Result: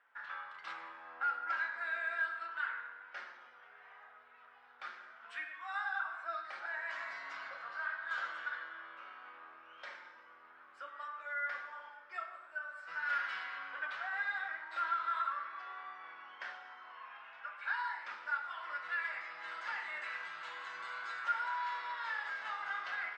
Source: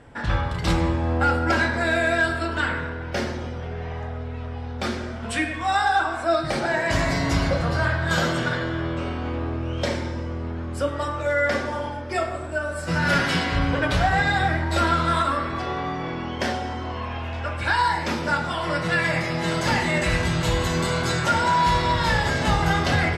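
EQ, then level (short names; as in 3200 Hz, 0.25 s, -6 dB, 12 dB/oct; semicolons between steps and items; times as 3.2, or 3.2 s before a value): ladder band-pass 1600 Hz, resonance 45%; -5.5 dB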